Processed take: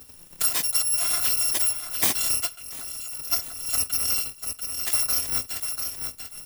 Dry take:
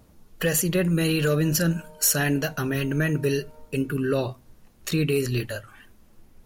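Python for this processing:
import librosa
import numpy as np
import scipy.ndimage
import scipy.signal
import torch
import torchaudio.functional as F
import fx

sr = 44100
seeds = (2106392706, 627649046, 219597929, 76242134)

y = fx.bit_reversed(x, sr, seeds[0], block=256)
y = fx.low_shelf(y, sr, hz=60.0, db=-10.0)
y = fx.echo_feedback(y, sr, ms=691, feedback_pct=21, wet_db=-9)
y = fx.level_steps(y, sr, step_db=19, at=(2.55, 3.31), fade=0.02)
y = fx.transient(y, sr, attack_db=5, sustain_db=-4)
y = fx.band_squash(y, sr, depth_pct=40)
y = y * librosa.db_to_amplitude(-2.0)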